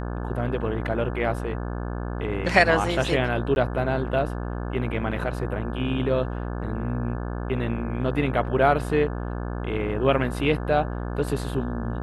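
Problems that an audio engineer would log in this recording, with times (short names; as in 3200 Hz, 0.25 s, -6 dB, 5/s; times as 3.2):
buzz 60 Hz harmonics 29 -30 dBFS
3.55–3.56 gap 11 ms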